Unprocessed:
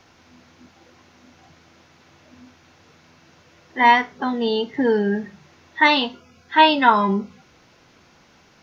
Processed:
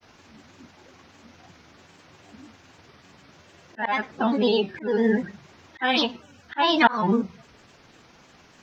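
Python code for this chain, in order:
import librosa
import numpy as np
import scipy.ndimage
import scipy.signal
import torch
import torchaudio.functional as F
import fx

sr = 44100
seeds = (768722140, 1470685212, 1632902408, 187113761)

y = fx.granulator(x, sr, seeds[0], grain_ms=100.0, per_s=20.0, spray_ms=14.0, spread_st=3)
y = fx.auto_swell(y, sr, attack_ms=263.0)
y = y * librosa.db_to_amplitude(2.0)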